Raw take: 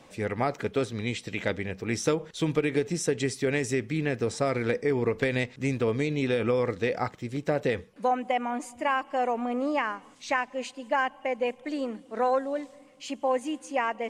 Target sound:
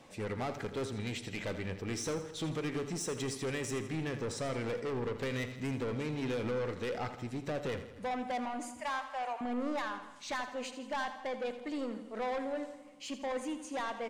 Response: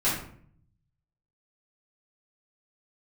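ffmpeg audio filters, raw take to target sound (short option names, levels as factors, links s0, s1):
-filter_complex "[0:a]asettb=1/sr,asplit=3[s0][s1][s2];[s0]atrim=end=8.804[s3];[s1]atrim=start=8.8:end=9.41,asetpts=PTS-STARTPTS,afade=t=in:d=0.004:c=qsin,afade=t=out:st=0.606:d=0.004:c=qsin,highpass=f=670:w=0.5412,highpass=f=670:w=1.3066[s4];[s2]atrim=start=9.406[s5];[s3][s4]acrossfade=d=0.004:c1=hsin:c2=qsin[s6];[s6][s5]acrossfade=d=0.004:c1=qsin:c2=hsin,asoftclip=type=tanh:threshold=0.0376,aecho=1:1:82|164|246|328|410|492:0.266|0.144|0.0776|0.0419|0.0226|0.0122,asplit=2[s7][s8];[1:a]atrim=start_sample=2205,asetrate=32193,aresample=44100[s9];[s8][s9]afir=irnorm=-1:irlink=0,volume=0.0355[s10];[s7][s10]amix=inputs=2:normalize=0,volume=0.631"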